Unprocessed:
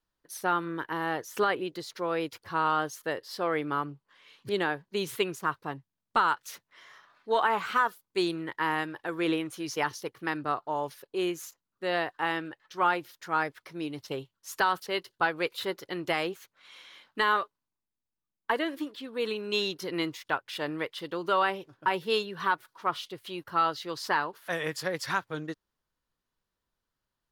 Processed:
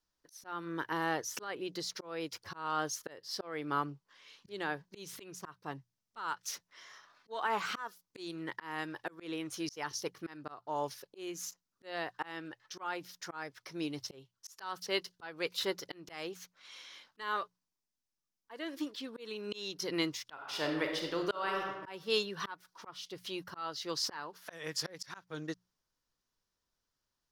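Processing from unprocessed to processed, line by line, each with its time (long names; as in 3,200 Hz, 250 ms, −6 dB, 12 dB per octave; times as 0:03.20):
0:20.33–0:21.73: thrown reverb, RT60 1.1 s, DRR 2.5 dB
whole clip: parametric band 5,600 Hz +10 dB 0.7 octaves; mains-hum notches 60/120/180 Hz; volume swells 359 ms; level −2.5 dB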